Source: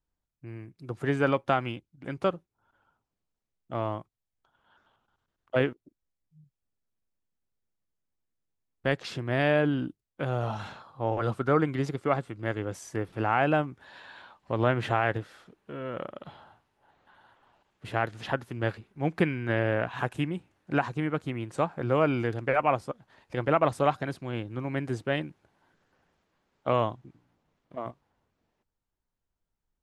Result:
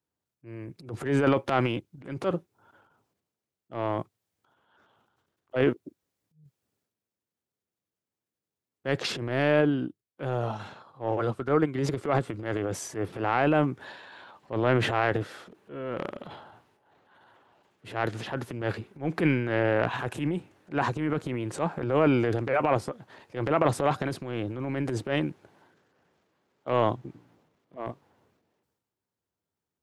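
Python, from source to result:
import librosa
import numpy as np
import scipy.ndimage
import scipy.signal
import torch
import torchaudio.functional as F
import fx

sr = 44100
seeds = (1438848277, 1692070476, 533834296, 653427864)

y = scipy.signal.sosfilt(scipy.signal.butter(4, 85.0, 'highpass', fs=sr, output='sos'), x)
y = fx.peak_eq(y, sr, hz=400.0, db=5.0, octaves=1.1)
y = fx.transient(y, sr, attack_db=-9, sustain_db=fx.steps((0.0, 10.0), (9.6, -4.0), (11.79, 8.0)))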